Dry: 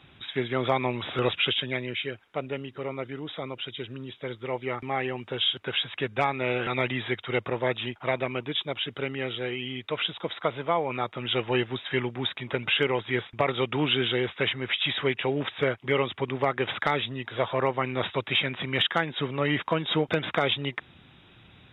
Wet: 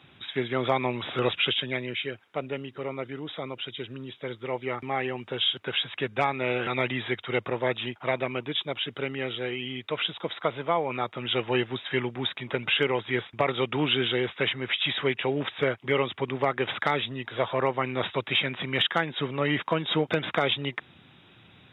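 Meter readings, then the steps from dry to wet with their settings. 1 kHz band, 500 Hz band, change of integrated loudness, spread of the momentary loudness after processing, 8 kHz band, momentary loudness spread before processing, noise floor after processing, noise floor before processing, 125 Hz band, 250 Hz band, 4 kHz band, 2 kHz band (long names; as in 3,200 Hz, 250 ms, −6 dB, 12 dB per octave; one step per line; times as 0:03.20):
0.0 dB, 0.0 dB, 0.0 dB, 9 LU, can't be measured, 9 LU, −56 dBFS, −55 dBFS, −1.0 dB, 0.0 dB, 0.0 dB, 0.0 dB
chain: high-pass filter 98 Hz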